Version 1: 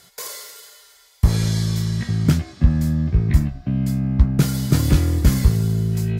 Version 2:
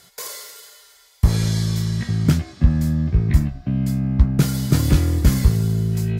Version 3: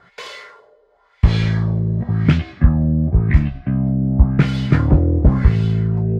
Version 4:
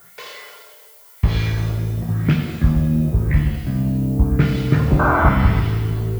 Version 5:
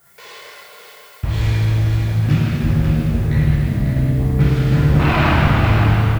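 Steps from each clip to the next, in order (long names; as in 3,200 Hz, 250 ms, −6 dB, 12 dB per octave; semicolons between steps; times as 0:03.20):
no processing that can be heard
auto-filter low-pass sine 0.93 Hz 490–3,000 Hz; level +2.5 dB
sound drawn into the spectrogram noise, 0:04.99–0:05.30, 580–1,600 Hz −15 dBFS; background noise violet −45 dBFS; reverb with rising layers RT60 1.4 s, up +7 semitones, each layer −8 dB, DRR 3.5 dB; level −3.5 dB
phase distortion by the signal itself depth 0.44 ms; single-tap delay 546 ms −6.5 dB; dense smooth reverb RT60 2.8 s, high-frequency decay 0.85×, DRR −7 dB; level −6.5 dB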